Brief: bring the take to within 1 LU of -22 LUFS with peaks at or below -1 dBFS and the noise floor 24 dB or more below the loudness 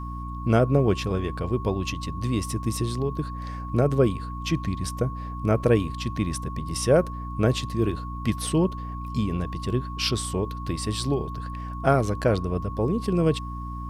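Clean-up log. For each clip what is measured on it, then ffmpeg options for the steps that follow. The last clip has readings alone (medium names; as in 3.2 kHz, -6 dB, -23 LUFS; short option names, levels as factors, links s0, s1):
hum 60 Hz; highest harmonic 300 Hz; hum level -31 dBFS; steady tone 1.1 kHz; tone level -37 dBFS; loudness -26.0 LUFS; peak level -7.5 dBFS; loudness target -22.0 LUFS
-> -af "bandreject=f=60:t=h:w=6,bandreject=f=120:t=h:w=6,bandreject=f=180:t=h:w=6,bandreject=f=240:t=h:w=6,bandreject=f=300:t=h:w=6"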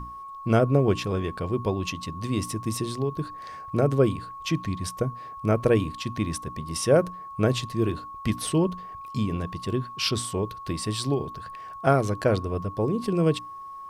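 hum not found; steady tone 1.1 kHz; tone level -37 dBFS
-> -af "bandreject=f=1100:w=30"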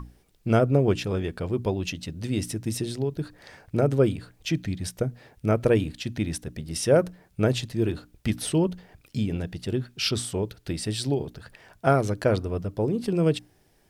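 steady tone not found; loudness -26.5 LUFS; peak level -8.0 dBFS; loudness target -22.0 LUFS
-> -af "volume=1.68"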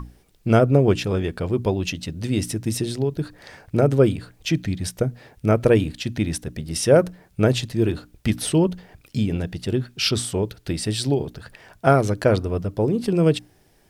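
loudness -22.0 LUFS; peak level -3.5 dBFS; noise floor -58 dBFS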